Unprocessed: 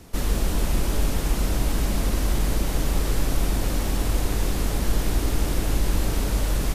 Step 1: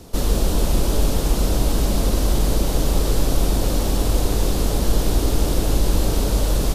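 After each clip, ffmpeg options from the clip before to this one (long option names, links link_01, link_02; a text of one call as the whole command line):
ffmpeg -i in.wav -af "equalizer=frequency=500:width_type=o:width=1:gain=4,equalizer=frequency=2000:width_type=o:width=1:gain=-7,equalizer=frequency=4000:width_type=o:width=1:gain=3,volume=4dB" out.wav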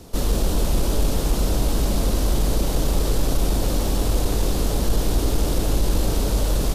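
ffmpeg -i in.wav -af "asoftclip=type=tanh:threshold=-7dB,volume=-1dB" out.wav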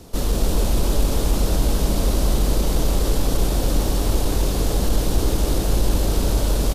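ffmpeg -i in.wav -af "aecho=1:1:278:0.501" out.wav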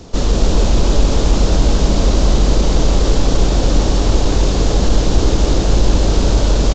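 ffmpeg -i in.wav -af "aresample=16000,aresample=44100,volume=6.5dB" out.wav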